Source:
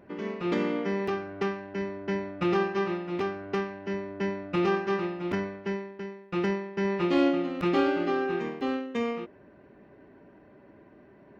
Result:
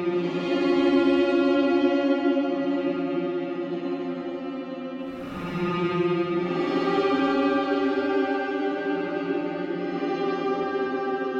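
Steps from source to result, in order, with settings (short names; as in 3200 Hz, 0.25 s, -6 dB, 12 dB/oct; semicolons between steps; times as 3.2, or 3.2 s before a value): Paulstretch 10×, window 0.10 s, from 7.07; delay with a stepping band-pass 0.366 s, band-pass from 340 Hz, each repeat 0.7 oct, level -10 dB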